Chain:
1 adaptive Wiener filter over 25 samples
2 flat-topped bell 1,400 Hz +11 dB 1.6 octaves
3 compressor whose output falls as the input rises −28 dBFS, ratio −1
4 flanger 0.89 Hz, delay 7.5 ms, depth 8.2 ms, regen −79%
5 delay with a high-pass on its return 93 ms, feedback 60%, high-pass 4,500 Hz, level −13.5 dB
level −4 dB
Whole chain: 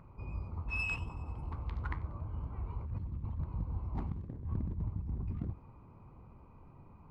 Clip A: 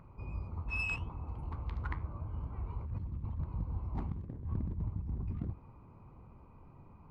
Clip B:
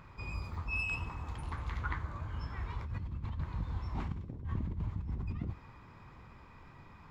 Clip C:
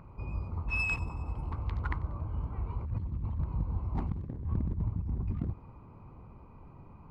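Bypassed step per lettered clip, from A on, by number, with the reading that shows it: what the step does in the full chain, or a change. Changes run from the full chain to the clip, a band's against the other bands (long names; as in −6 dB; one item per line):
5, echo-to-direct ratio −27.0 dB to none audible
1, 1 kHz band +4.0 dB
4, change in integrated loudness +4.5 LU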